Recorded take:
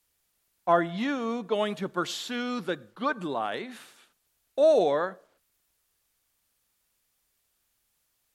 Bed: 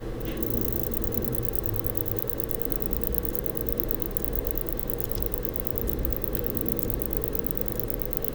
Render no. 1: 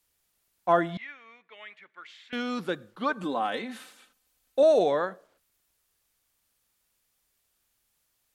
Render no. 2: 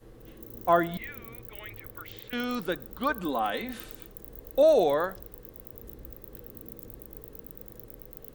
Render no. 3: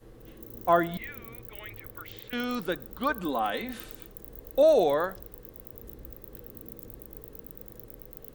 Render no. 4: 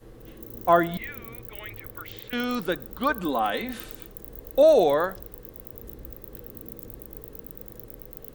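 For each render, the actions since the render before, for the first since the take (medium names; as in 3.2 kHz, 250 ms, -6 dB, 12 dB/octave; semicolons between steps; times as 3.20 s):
0.97–2.33 s: band-pass filter 2.1 kHz, Q 5.8; 3.23–4.63 s: comb 3.9 ms
add bed -17.5 dB
no audible change
trim +3.5 dB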